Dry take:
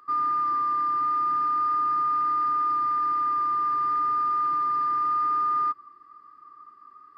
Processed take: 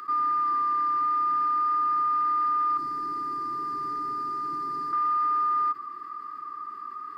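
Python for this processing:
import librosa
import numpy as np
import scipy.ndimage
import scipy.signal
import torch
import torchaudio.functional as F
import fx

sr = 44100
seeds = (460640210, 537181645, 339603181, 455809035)

y = fx.band_shelf(x, sr, hz=1500.0, db=-12.5, octaves=2.9, at=(2.77, 4.93))
y = scipy.signal.sosfilt(scipy.signal.cheby1(4, 1.0, [440.0, 1200.0], 'bandstop', fs=sr, output='sos'), y)
y = fx.low_shelf(y, sr, hz=130.0, db=-10.0)
y = fx.env_flatten(y, sr, amount_pct=50)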